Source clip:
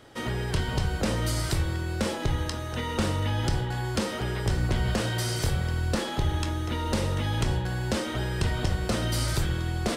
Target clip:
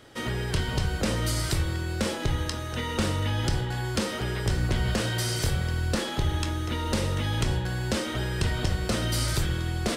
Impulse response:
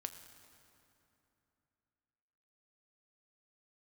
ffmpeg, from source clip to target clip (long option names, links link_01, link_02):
-filter_complex "[0:a]asplit=2[link_01][link_02];[link_02]highpass=frequency=750:width=0.5412,highpass=frequency=750:width=1.3066[link_03];[1:a]atrim=start_sample=2205[link_04];[link_03][link_04]afir=irnorm=-1:irlink=0,volume=-8dB[link_05];[link_01][link_05]amix=inputs=2:normalize=0"